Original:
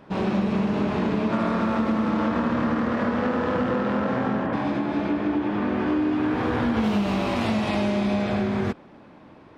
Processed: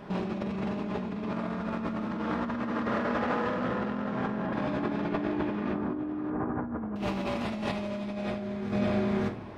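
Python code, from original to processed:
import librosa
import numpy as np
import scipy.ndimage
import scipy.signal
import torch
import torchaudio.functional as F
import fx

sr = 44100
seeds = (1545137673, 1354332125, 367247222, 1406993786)

y = fx.low_shelf(x, sr, hz=270.0, db=-5.0, at=(2.19, 3.64))
y = fx.lowpass(y, sr, hz=1400.0, slope=24, at=(5.73, 6.96))
y = y + 10.0 ** (-9.0 / 20.0) * np.pad(y, (int(565 * sr / 1000.0), 0))[:len(y)]
y = fx.room_shoebox(y, sr, seeds[0], volume_m3=450.0, walls='furnished', distance_m=1.3)
y = fx.over_compress(y, sr, threshold_db=-28.0, ratio=-1.0)
y = y * 10.0 ** (-3.5 / 20.0)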